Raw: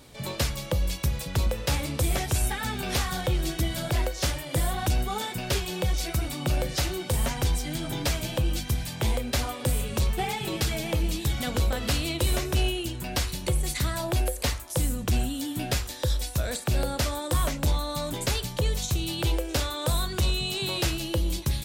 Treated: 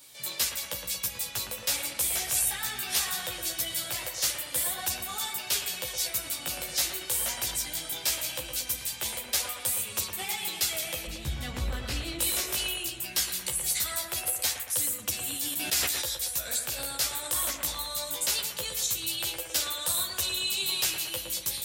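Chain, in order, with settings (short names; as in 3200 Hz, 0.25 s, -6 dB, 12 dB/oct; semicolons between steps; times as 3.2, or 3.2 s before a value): tilt +4.5 dB/oct; chorus voices 2, 0.2 Hz, delay 14 ms, depth 4.3 ms; 11.07–12.19 RIAA curve playback; on a send: analogue delay 0.114 s, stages 2048, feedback 58%, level -6.5 dB; 15.19–16.15 on the sum: sustainer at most 25 dB/s; gain -4.5 dB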